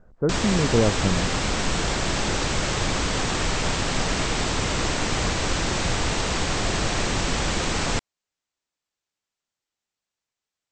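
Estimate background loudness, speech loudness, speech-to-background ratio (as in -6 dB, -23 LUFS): -24.5 LUFS, -24.5 LUFS, 0.0 dB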